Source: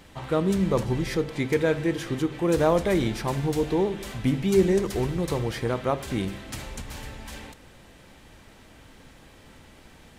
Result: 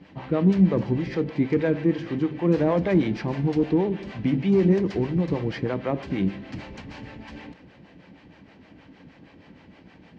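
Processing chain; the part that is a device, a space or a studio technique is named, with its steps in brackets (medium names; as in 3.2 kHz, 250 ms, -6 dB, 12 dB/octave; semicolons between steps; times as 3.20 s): guitar amplifier with harmonic tremolo (harmonic tremolo 6.4 Hz, depth 70%, crossover 470 Hz; saturation -16.5 dBFS, distortion -21 dB; cabinet simulation 82–4300 Hz, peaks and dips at 180 Hz +8 dB, 290 Hz +7 dB, 1.3 kHz -5 dB, 3.6 kHz -8 dB); trim +3 dB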